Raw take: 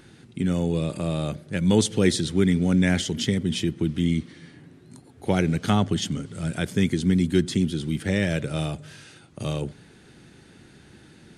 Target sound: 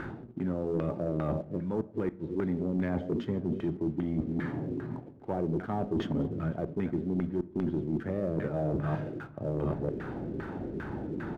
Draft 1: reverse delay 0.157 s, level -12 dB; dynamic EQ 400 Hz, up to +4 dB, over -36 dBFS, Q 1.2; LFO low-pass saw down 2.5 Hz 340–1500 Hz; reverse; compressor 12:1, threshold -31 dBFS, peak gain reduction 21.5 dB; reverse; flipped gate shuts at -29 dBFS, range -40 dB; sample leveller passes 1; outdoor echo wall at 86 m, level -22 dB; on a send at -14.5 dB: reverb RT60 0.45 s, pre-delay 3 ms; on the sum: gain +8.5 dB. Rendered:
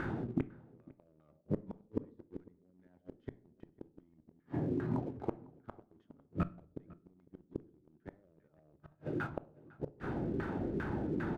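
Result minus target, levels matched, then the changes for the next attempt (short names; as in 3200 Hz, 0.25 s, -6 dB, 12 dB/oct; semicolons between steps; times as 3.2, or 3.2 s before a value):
compressor: peak gain reduction -7.5 dB
change: compressor 12:1, threshold -39 dBFS, peak gain reduction 29 dB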